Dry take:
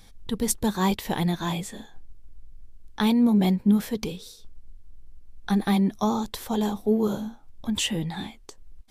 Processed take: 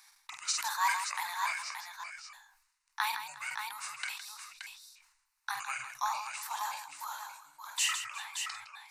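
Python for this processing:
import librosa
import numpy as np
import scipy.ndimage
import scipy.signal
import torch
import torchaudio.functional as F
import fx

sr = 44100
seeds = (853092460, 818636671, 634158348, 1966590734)

y = fx.pitch_trill(x, sr, semitones=-7.0, every_ms=292)
y = scipy.signal.sosfilt(scipy.signal.ellip(4, 1.0, 50, 930.0, 'highpass', fs=sr, output='sos'), y)
y = fx.peak_eq(y, sr, hz=3300.0, db=-14.5, octaves=0.24)
y = fx.echo_multitap(y, sr, ms=(48, 161, 358, 574), db=(-13.0, -10.5, -19.5, -7.0))
y = fx.sustainer(y, sr, db_per_s=67.0)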